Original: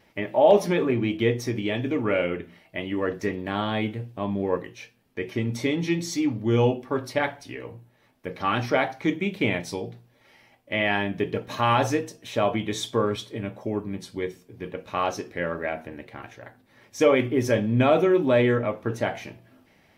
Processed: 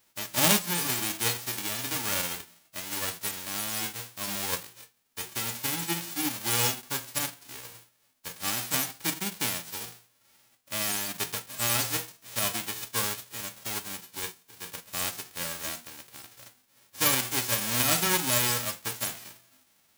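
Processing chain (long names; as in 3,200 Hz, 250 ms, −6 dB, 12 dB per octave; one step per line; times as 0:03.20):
spectral envelope flattened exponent 0.1
level −6 dB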